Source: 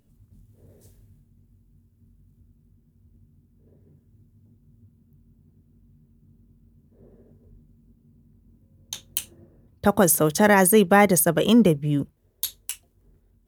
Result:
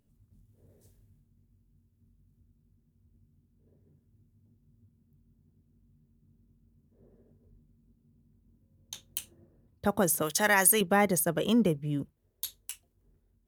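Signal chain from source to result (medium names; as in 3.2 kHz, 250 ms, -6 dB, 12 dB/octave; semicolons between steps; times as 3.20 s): 10.22–10.81 s: tilt shelf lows -8 dB, about 790 Hz; trim -8.5 dB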